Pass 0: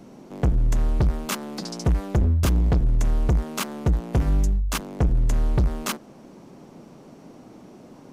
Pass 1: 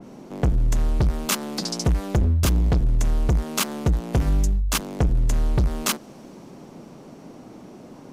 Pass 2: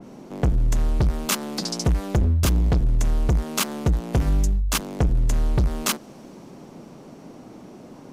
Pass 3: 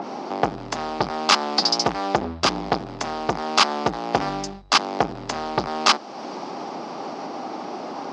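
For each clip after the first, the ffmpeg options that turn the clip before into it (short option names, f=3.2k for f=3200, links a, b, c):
-af "acompressor=threshold=-25dB:ratio=1.5,adynamicequalizer=threshold=0.00501:dfrequency=2600:dqfactor=0.7:tfrequency=2600:tqfactor=0.7:attack=5:release=100:ratio=0.375:range=2.5:mode=boostabove:tftype=highshelf,volume=3dB"
-af anull
-af "acompressor=mode=upward:threshold=-28dB:ratio=2.5,highpass=370,equalizer=f=490:t=q:w=4:g=-3,equalizer=f=800:t=q:w=4:g=9,equalizer=f=1.2k:t=q:w=4:g=5,equalizer=f=4.9k:t=q:w=4:g=7,lowpass=f=5.3k:w=0.5412,lowpass=f=5.3k:w=1.3066,volume=7dB"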